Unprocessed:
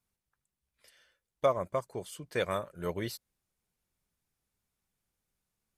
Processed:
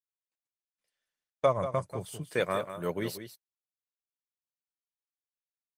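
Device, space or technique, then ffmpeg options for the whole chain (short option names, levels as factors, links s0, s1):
video call: -filter_complex "[0:a]asplit=3[s0][s1][s2];[s0]afade=t=out:st=1.46:d=0.02[s3];[s1]asubboost=boost=7.5:cutoff=140,afade=t=in:st=1.46:d=0.02,afade=t=out:st=2.22:d=0.02[s4];[s2]afade=t=in:st=2.22:d=0.02[s5];[s3][s4][s5]amix=inputs=3:normalize=0,highpass=f=110:w=0.5412,highpass=f=110:w=1.3066,aecho=1:1:187:0.299,dynaudnorm=f=120:g=9:m=1.78,agate=range=0.0631:threshold=0.00447:ratio=16:detection=peak,volume=0.75" -ar 48000 -c:a libopus -b:a 32k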